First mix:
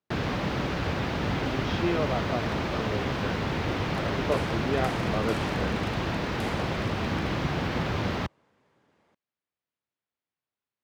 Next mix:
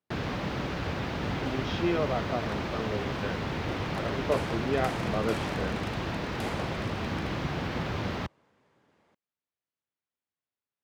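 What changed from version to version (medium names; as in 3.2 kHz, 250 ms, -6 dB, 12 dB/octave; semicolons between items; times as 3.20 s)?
first sound -3.5 dB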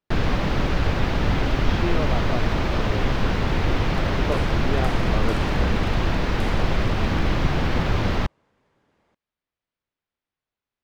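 first sound +7.5 dB; master: remove high-pass 95 Hz 12 dB/octave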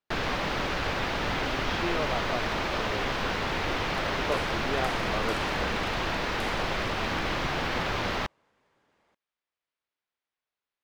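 first sound: add bass shelf 210 Hz -6 dB; master: add bass shelf 370 Hz -9.5 dB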